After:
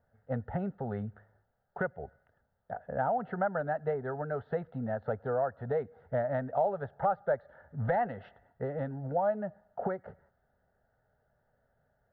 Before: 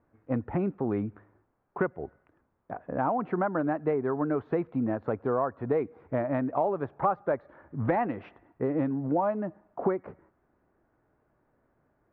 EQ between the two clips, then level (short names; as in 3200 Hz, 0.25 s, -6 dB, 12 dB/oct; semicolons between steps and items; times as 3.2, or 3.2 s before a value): fixed phaser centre 1600 Hz, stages 8; 0.0 dB